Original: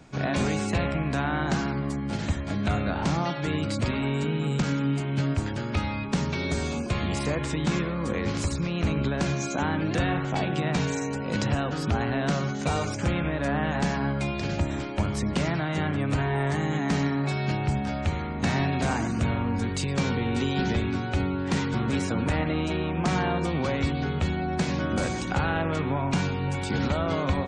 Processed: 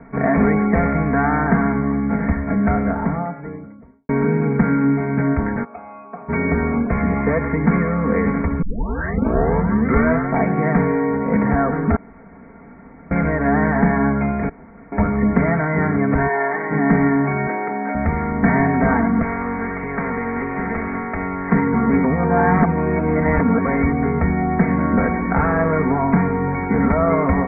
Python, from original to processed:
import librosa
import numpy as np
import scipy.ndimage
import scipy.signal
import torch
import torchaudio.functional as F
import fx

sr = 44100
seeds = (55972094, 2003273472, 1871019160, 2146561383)

y = fx.studio_fade_out(x, sr, start_s=2.32, length_s=1.77)
y = fx.vowel_filter(y, sr, vowel='a', at=(5.63, 6.28), fade=0.02)
y = fx.highpass(y, sr, hz=470.0, slope=12, at=(16.27, 16.7), fade=0.02)
y = fx.highpass(y, sr, hz=280.0, slope=24, at=(17.47, 17.95))
y = fx.spectral_comp(y, sr, ratio=2.0, at=(19.22, 21.52))
y = fx.edit(y, sr, fx.tape_start(start_s=8.62, length_s=1.69),
    fx.room_tone_fill(start_s=11.96, length_s=1.15),
    fx.room_tone_fill(start_s=14.49, length_s=0.43),
    fx.reverse_span(start_s=22.04, length_s=1.61), tone=tone)
y = scipy.signal.sosfilt(scipy.signal.cheby1(8, 1.0, 2200.0, 'lowpass', fs=sr, output='sos'), y)
y = y + 0.79 * np.pad(y, (int(4.4 * sr / 1000.0), 0))[:len(y)]
y = y * librosa.db_to_amplitude(8.5)